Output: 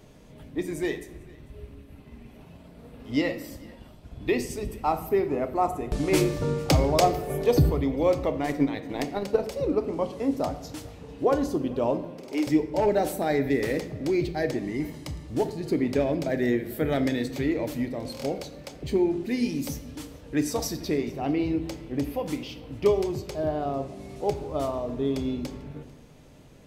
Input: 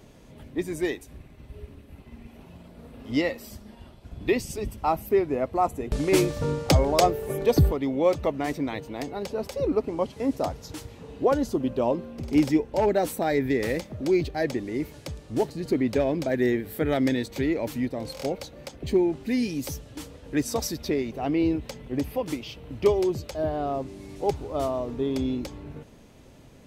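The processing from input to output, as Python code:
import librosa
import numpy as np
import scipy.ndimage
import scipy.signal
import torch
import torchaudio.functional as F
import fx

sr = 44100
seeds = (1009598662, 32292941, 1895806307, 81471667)

y = fx.transient(x, sr, attack_db=12, sustain_db=-7, at=(8.42, 9.48))
y = fx.highpass(y, sr, hz=360.0, slope=24, at=(12.02, 12.47))
y = fx.comb(y, sr, ms=1.0, depth=0.49, at=(14.62, 15.25))
y = y + 10.0 ** (-24.0 / 20.0) * np.pad(y, (int(445 * sr / 1000.0), 0))[:len(y)]
y = fx.room_shoebox(y, sr, seeds[0], volume_m3=260.0, walls='mixed', distance_m=0.43)
y = y * 10.0 ** (-1.5 / 20.0)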